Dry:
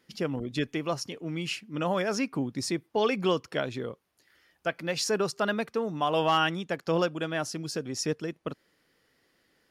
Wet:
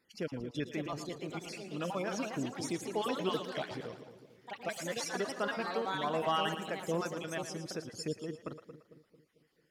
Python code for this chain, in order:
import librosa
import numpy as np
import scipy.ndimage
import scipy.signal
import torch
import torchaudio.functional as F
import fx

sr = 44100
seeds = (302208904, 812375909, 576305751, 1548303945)

y = fx.spec_dropout(x, sr, seeds[0], share_pct=29)
y = fx.echo_pitch(y, sr, ms=591, semitones=3, count=3, db_per_echo=-6.0)
y = fx.echo_split(y, sr, split_hz=490.0, low_ms=224, high_ms=114, feedback_pct=52, wet_db=-10.5)
y = y * 10.0 ** (-7.0 / 20.0)